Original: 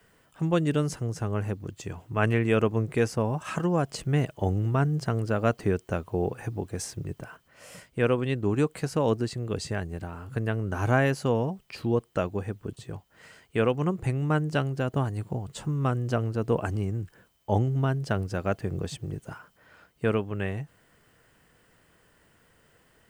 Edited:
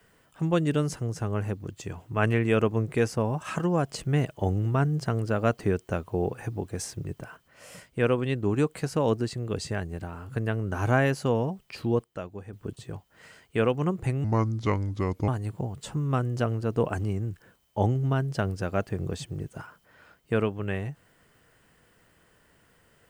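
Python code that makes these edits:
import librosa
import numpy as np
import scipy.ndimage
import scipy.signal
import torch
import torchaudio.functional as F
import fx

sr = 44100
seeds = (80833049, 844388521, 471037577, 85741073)

y = fx.edit(x, sr, fx.clip_gain(start_s=12.04, length_s=0.49, db=-9.0),
    fx.speed_span(start_s=14.24, length_s=0.76, speed=0.73), tone=tone)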